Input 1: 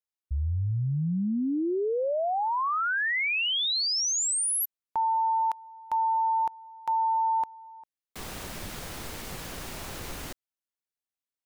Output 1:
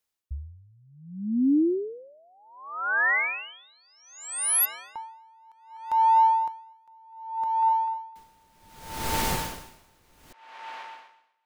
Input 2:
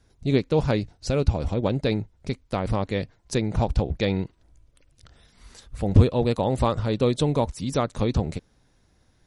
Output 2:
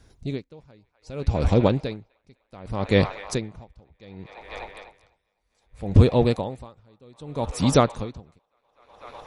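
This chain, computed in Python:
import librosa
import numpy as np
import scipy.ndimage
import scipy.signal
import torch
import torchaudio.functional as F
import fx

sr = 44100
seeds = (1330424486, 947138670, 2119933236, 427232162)

y = fx.rider(x, sr, range_db=5, speed_s=0.5)
y = fx.echo_wet_bandpass(y, sr, ms=250, feedback_pct=83, hz=1500.0, wet_db=-12.5)
y = y * 10.0 ** (-37 * (0.5 - 0.5 * np.cos(2.0 * np.pi * 0.65 * np.arange(len(y)) / sr)) / 20.0)
y = y * 10.0 ** (7.0 / 20.0)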